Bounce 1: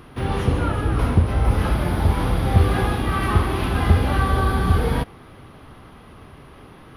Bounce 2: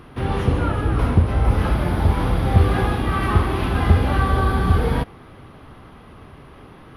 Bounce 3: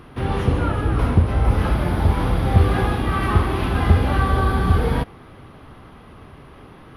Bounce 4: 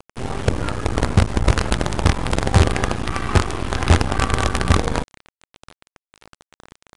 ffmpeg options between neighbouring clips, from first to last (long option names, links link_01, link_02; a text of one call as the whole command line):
ffmpeg -i in.wav -af "highshelf=frequency=4400:gain=-5.5,volume=1dB" out.wav
ffmpeg -i in.wav -af anull out.wav
ffmpeg -i in.wav -af "acrusher=bits=3:dc=4:mix=0:aa=0.000001,aresample=22050,aresample=44100" out.wav